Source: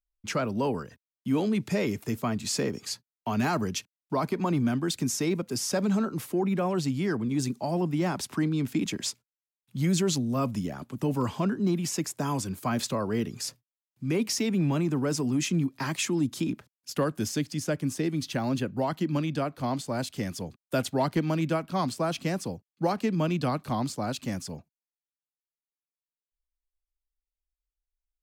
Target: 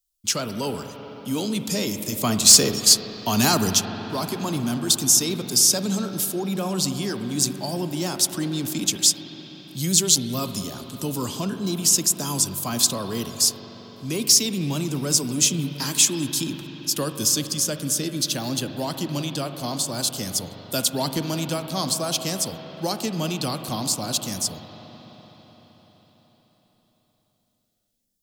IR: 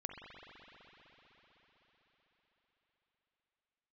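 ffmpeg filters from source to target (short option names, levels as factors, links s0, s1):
-filter_complex "[0:a]aexciter=amount=4.1:drive=8.1:freq=3100,asettb=1/sr,asplit=3[s0][s1][s2];[s0]atrim=end=2.214[s3];[s1]atrim=start=2.21:end=3.75,asetpts=PTS-STARTPTS,afade=t=in:d=0.004:c=qsin,afade=t=out:st=1.536:d=0.004:c=qsin,acontrast=69[s4];[s2]atrim=start=3.746[s5];[s3][s4]acrossfade=d=0.004:c1=hsin:c2=qsin[s6];[s6][s5]acrossfade=d=0.004:c1=qsin:c2=hsin,asplit=2[s7][s8];[1:a]atrim=start_sample=2205[s9];[s8][s9]afir=irnorm=-1:irlink=0,volume=1.19[s10];[s7][s10]amix=inputs=2:normalize=0,volume=0.531"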